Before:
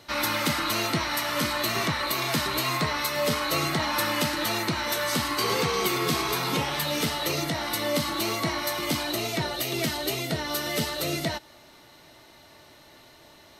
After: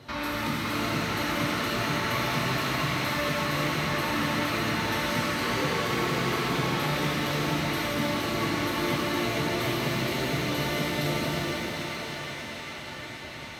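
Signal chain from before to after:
high-pass filter 110 Hz 6 dB per octave
bass and treble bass +10 dB, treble −8 dB
downward compressor 6 to 1, threshold −35 dBFS, peak gain reduction 16 dB
on a send: feedback echo with a band-pass in the loop 753 ms, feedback 74%, band-pass 2,100 Hz, level −3 dB
on the sum: reverb with rising layers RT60 3.7 s, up +7 semitones, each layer −8 dB, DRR −7.5 dB

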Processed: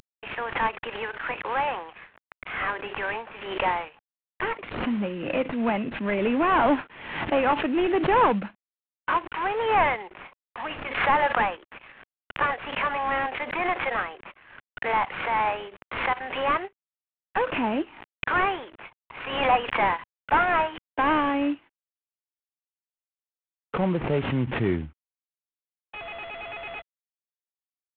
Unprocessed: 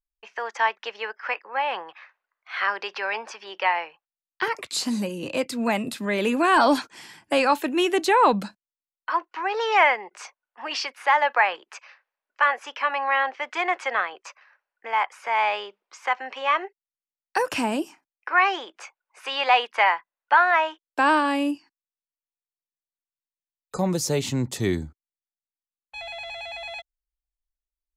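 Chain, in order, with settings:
variable-slope delta modulation 16 kbit/s
background raised ahead of every attack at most 64 dB per second

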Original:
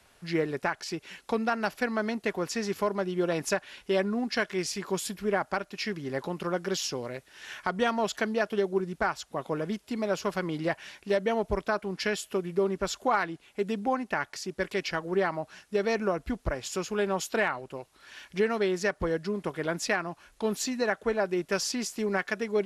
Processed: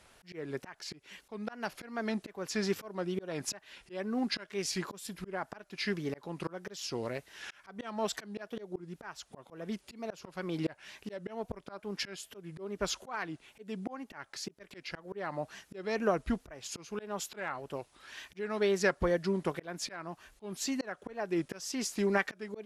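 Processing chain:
tape wow and flutter 120 cents
volume swells 377 ms

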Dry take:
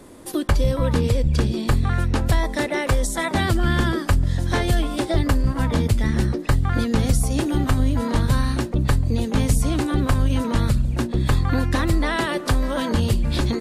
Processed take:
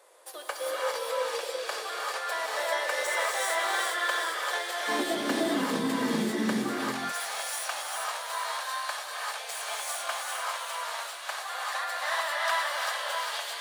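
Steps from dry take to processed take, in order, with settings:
stylus tracing distortion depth 0.033 ms
elliptic high-pass filter 500 Hz, stop band 60 dB, from 0:04.87 200 Hz, from 0:06.70 640 Hz
delay with a high-pass on its return 395 ms, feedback 48%, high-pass 1,900 Hz, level −3.5 dB
reverb whose tail is shaped and stops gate 430 ms rising, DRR −4.5 dB
level −8 dB

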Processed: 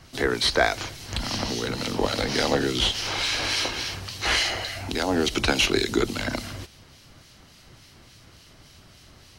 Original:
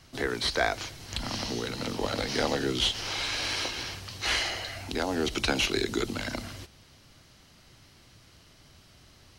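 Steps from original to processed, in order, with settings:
two-band tremolo in antiphase 3.5 Hz, depth 50%, crossover 1,900 Hz
level +7.5 dB

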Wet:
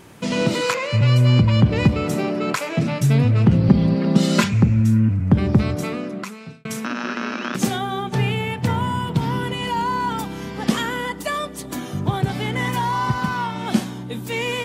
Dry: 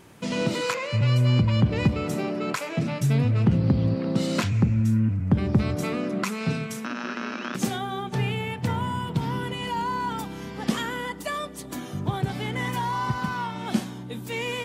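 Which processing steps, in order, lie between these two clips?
0:03.68–0:04.54: comb filter 5 ms, depth 82%
0:05.49–0:06.65: fade out
level +5.5 dB

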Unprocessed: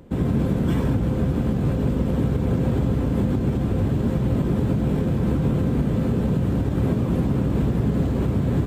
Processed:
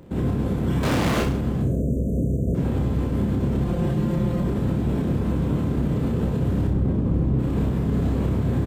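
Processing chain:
0:01.62–0:02.55: time-frequency box erased 700–5,900 Hz
0:03.64–0:04.42: comb filter 5.7 ms, depth 95%
0:06.67–0:07.39: spectral tilt −2.5 dB per octave
brickwall limiter −18 dBFS, peak gain reduction 13 dB
0:00.83–0:01.23: mid-hump overdrive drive 43 dB, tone 6,400 Hz, clips at −18 dBFS
on a send: reverse bouncing-ball delay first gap 30 ms, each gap 1.1×, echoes 5

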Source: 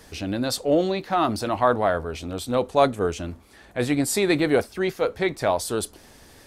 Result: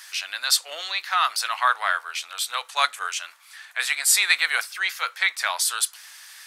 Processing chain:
high-pass filter 1,300 Hz 24 dB per octave
level +9 dB

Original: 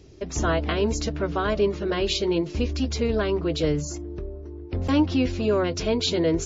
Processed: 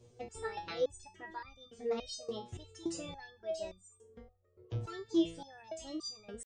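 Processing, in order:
reverb reduction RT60 1.2 s
pitch shifter +4 semitones
step-sequenced resonator 3.5 Hz 120–1,200 Hz

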